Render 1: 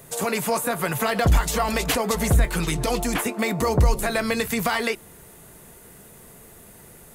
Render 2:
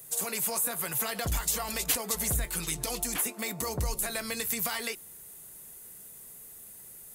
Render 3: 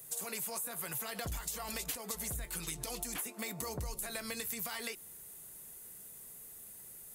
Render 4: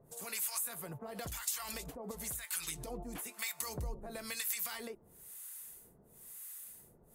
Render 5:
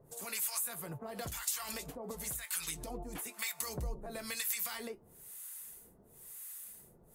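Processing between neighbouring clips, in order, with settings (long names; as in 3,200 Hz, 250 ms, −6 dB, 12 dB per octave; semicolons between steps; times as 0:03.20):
first-order pre-emphasis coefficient 0.8
downward compressor, threshold −33 dBFS, peak gain reduction 10.5 dB; level −3 dB
two-band tremolo in antiphase 1 Hz, depth 100%, crossover 950 Hz; level +3.5 dB
flanger 0.32 Hz, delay 2 ms, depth 8.1 ms, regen −66%; level +5.5 dB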